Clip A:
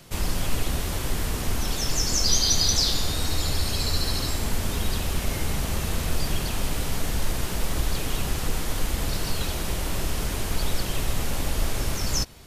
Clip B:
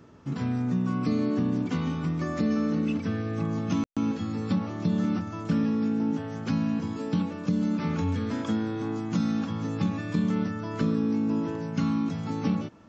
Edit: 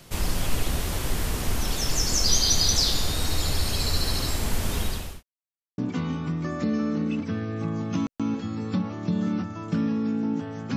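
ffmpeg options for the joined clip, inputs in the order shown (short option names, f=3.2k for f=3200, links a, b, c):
-filter_complex "[0:a]apad=whole_dur=10.76,atrim=end=10.76,asplit=2[a][b];[a]atrim=end=5.23,asetpts=PTS-STARTPTS,afade=t=out:st=4.79:d=0.44[c];[b]atrim=start=5.23:end=5.78,asetpts=PTS-STARTPTS,volume=0[d];[1:a]atrim=start=1.55:end=6.53,asetpts=PTS-STARTPTS,afade=t=in:d=0.004:c=hsin[e];[c][d][e]concat=n=3:v=0:a=1"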